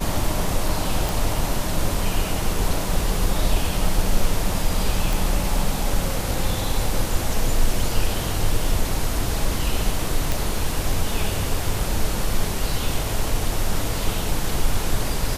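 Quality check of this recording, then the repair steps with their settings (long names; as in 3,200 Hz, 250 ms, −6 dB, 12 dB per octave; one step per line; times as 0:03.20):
0:01.09: click
0:05.13: click
0:10.32: click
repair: click removal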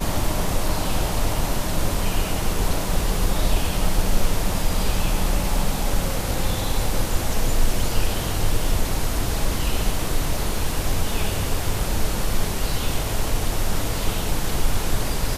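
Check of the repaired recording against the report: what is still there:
none of them is left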